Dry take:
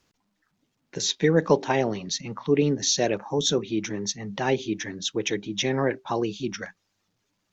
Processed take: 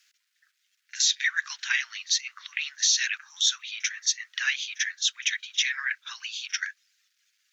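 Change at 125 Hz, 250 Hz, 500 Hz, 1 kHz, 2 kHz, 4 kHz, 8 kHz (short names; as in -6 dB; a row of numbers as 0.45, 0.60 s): under -40 dB, under -40 dB, under -40 dB, -16.0 dB, +6.5 dB, +4.0 dB, n/a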